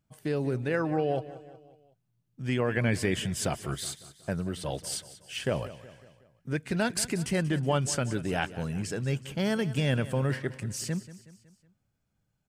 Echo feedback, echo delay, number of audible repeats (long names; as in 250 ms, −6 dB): 50%, 185 ms, 4